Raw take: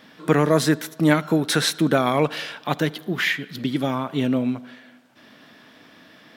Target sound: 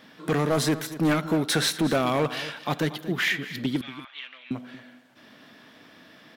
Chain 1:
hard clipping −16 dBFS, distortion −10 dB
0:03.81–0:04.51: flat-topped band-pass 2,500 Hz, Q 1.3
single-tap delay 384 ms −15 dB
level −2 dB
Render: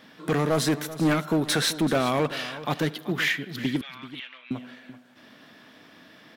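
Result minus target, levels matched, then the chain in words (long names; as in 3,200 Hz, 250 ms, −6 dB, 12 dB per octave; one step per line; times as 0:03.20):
echo 150 ms late
hard clipping −16 dBFS, distortion −10 dB
0:03.81–0:04.51: flat-topped band-pass 2,500 Hz, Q 1.3
single-tap delay 234 ms −15 dB
level −2 dB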